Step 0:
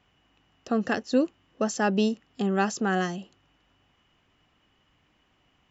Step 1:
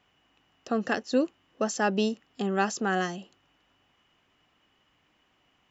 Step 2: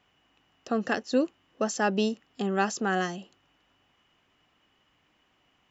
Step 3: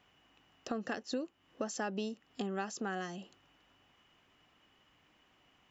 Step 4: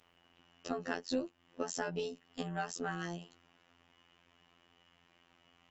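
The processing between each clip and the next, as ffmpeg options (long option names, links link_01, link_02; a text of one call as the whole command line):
ffmpeg -i in.wav -af "lowshelf=frequency=170:gain=-9" out.wav
ffmpeg -i in.wav -af anull out.wav
ffmpeg -i in.wav -af "acompressor=threshold=-36dB:ratio=4" out.wav
ffmpeg -i in.wav -af "afftfilt=real='hypot(re,im)*cos(PI*b)':imag='0':win_size=2048:overlap=0.75,volume=4dB" -ar 48000 -c:a libopus -b:a 16k out.opus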